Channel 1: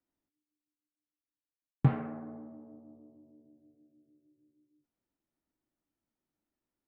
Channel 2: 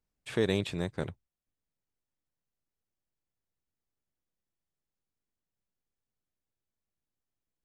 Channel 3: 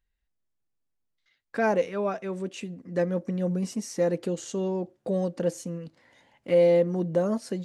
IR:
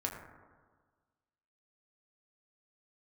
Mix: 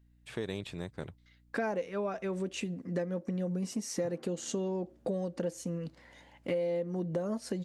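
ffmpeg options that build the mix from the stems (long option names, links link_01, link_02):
-filter_complex "[0:a]adelay=2200,volume=-14dB[link_01];[1:a]aeval=exprs='val(0)+0.00141*(sin(2*PI*60*n/s)+sin(2*PI*2*60*n/s)/2+sin(2*PI*3*60*n/s)/3+sin(2*PI*4*60*n/s)/4+sin(2*PI*5*60*n/s)/5)':channel_layout=same,volume=-6dB,asplit=3[link_02][link_03][link_04];[link_02]atrim=end=2.67,asetpts=PTS-STARTPTS,afade=type=out:start_time=2.666:duration=0.004:curve=hsin[link_05];[link_03]atrim=start=2.67:end=4.72,asetpts=PTS-STARTPTS,volume=0[link_06];[link_04]atrim=start=4.72,asetpts=PTS-STARTPTS,afade=type=in:duration=0.004:curve=hsin[link_07];[link_05][link_06][link_07]concat=n=3:v=0:a=1[link_08];[2:a]volume=2.5dB[link_09];[link_01][link_08][link_09]amix=inputs=3:normalize=0,acompressor=threshold=-31dB:ratio=6"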